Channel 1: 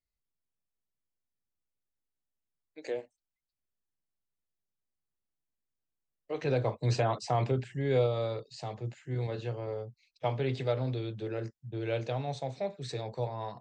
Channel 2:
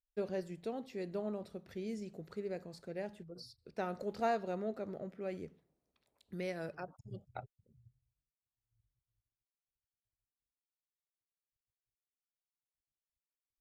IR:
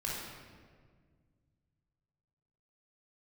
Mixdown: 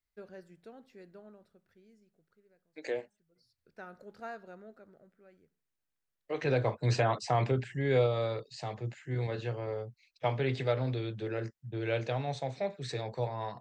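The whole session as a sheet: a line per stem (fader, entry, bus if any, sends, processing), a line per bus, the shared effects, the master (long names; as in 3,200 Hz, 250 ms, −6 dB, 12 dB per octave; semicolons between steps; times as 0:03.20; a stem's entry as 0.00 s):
0.0 dB, 0.00 s, no send, parametric band 1,800 Hz +5.5 dB 1 octave
−11.0 dB, 0.00 s, no send, parametric band 1,500 Hz +10.5 dB 0.49 octaves; automatic ducking −20 dB, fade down 1.80 s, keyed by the first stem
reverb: not used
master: no processing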